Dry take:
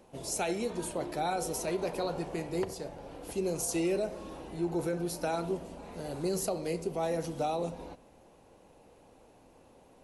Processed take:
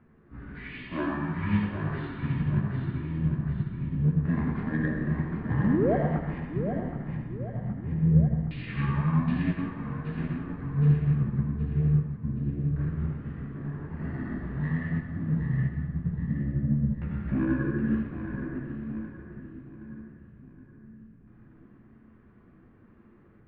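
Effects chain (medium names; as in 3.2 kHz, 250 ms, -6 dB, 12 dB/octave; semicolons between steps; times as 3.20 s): in parallel at +2 dB: peak limiter -32.5 dBFS, peak gain reduction 10 dB; on the sum: LFO low-pass square 0.55 Hz 340–4100 Hz; flange 0.28 Hz, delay 5.6 ms, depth 6.5 ms, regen -10%; painted sound rise, 2.35–2.55 s, 230–1900 Hz -27 dBFS; saturation -20.5 dBFS, distortion -20 dB; distance through air 51 m; on a send: two-band feedback delay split 740 Hz, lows 438 ms, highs 329 ms, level -6 dB; on the sum: Schroeder reverb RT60 0.47 s, combs from 29 ms, DRR 1.5 dB; speed mistake 78 rpm record played at 33 rpm; upward expansion 1.5:1, over -41 dBFS; trim +5 dB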